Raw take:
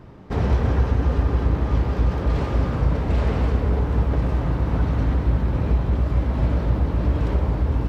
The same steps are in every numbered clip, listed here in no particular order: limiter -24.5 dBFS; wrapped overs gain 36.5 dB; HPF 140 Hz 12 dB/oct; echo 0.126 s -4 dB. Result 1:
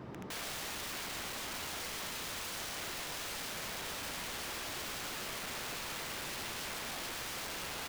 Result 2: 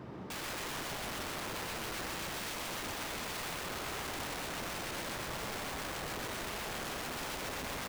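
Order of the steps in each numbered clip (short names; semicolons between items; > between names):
HPF > limiter > echo > wrapped overs; limiter > HPF > wrapped overs > echo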